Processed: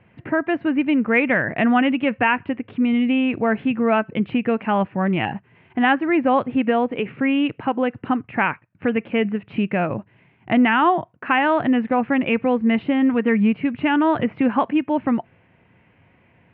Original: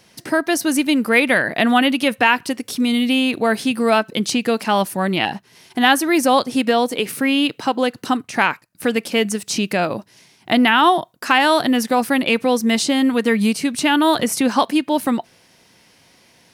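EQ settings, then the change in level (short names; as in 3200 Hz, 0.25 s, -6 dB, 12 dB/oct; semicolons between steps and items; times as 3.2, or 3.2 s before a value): steep low-pass 2700 Hz 48 dB/oct; bell 94 Hz +11.5 dB 1.7 oct; -3.5 dB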